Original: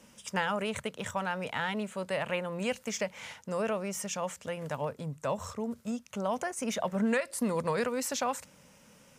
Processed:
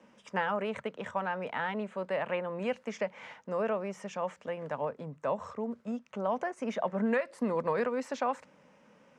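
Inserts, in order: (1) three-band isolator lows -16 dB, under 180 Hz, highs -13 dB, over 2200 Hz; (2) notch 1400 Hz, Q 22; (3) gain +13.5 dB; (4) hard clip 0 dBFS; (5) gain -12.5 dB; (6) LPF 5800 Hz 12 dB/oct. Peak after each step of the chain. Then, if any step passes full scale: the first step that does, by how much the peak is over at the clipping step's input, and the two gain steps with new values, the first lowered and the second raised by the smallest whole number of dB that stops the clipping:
-17.5, -18.0, -4.5, -4.5, -17.0, -17.0 dBFS; no overload

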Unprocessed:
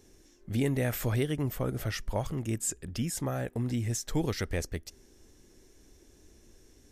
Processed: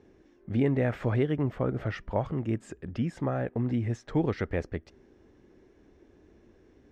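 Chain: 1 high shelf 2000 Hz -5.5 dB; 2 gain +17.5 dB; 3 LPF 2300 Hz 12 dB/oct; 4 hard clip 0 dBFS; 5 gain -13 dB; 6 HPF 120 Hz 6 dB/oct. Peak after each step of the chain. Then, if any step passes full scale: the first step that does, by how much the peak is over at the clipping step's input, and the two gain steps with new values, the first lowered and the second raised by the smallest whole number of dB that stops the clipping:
-19.5, -2.0, -2.0, -2.0, -15.0, -13.5 dBFS; no overload

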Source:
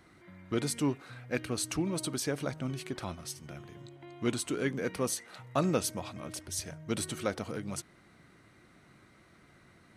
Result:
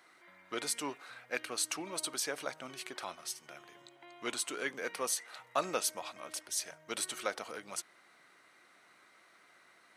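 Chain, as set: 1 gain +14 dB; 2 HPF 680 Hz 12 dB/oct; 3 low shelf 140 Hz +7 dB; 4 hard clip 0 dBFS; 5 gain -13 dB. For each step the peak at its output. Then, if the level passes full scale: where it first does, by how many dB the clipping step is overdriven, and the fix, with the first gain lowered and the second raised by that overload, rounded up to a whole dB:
-2.0, -4.5, -4.0, -4.0, -17.0 dBFS; no overload

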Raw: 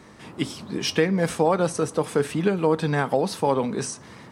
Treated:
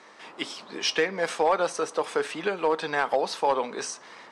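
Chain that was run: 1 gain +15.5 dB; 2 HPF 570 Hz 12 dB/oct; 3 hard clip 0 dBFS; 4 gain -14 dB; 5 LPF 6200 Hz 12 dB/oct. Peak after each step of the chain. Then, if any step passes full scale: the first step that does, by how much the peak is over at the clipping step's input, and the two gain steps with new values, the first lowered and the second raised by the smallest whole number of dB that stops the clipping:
+7.0, +5.0, 0.0, -14.0, -13.5 dBFS; step 1, 5.0 dB; step 1 +10.5 dB, step 4 -9 dB

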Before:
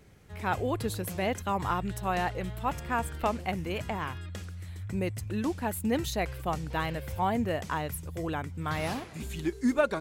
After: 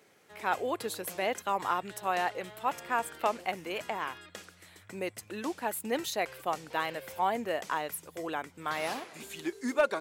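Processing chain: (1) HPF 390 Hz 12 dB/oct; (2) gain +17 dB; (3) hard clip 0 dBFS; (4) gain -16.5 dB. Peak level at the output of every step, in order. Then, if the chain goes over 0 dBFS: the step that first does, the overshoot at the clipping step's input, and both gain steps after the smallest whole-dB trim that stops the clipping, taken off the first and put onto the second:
-13.0, +4.0, 0.0, -16.5 dBFS; step 2, 4.0 dB; step 2 +13 dB, step 4 -12.5 dB

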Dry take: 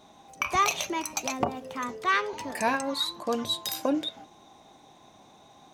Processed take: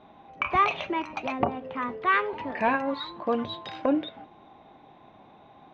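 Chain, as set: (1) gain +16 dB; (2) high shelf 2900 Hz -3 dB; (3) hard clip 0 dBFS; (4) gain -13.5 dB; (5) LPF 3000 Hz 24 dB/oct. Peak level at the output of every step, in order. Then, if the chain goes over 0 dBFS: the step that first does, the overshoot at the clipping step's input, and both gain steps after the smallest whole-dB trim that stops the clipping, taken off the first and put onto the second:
+4.5, +3.5, 0.0, -13.5, -12.5 dBFS; step 1, 3.5 dB; step 1 +12 dB, step 4 -9.5 dB

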